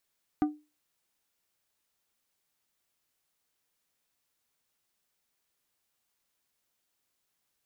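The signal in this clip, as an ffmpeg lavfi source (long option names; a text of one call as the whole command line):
ffmpeg -f lavfi -i "aevalsrc='0.106*pow(10,-3*t/0.28)*sin(2*PI*300*t)+0.0422*pow(10,-3*t/0.147)*sin(2*PI*750*t)+0.0168*pow(10,-3*t/0.106)*sin(2*PI*1200*t)+0.00668*pow(10,-3*t/0.091)*sin(2*PI*1500*t)+0.00266*pow(10,-3*t/0.076)*sin(2*PI*1950*t)':duration=0.89:sample_rate=44100" out.wav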